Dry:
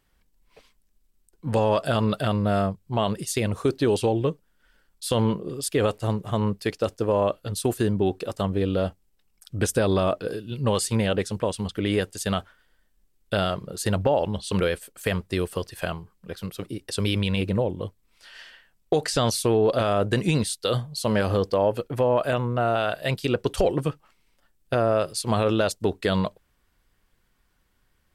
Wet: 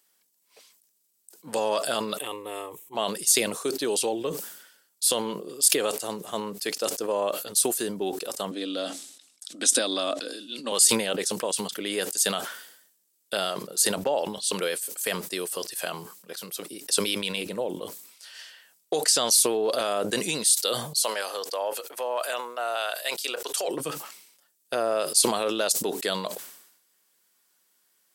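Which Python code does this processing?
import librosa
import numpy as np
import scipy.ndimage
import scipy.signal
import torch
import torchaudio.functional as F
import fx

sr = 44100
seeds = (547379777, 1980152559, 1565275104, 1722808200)

y = fx.fixed_phaser(x, sr, hz=970.0, stages=8, at=(2.17, 2.95))
y = fx.cabinet(y, sr, low_hz=230.0, low_slope=24, high_hz=9500.0, hz=(270.0, 420.0, 910.0, 3700.0), db=(9, -10, -7, 8), at=(8.51, 10.72))
y = fx.highpass(y, sr, hz=640.0, slope=12, at=(21.03, 23.68))
y = scipy.signal.sosfilt(scipy.signal.butter(4, 160.0, 'highpass', fs=sr, output='sos'), y)
y = fx.bass_treble(y, sr, bass_db=-13, treble_db=15)
y = fx.sustainer(y, sr, db_per_s=69.0)
y = y * librosa.db_to_amplitude(-3.5)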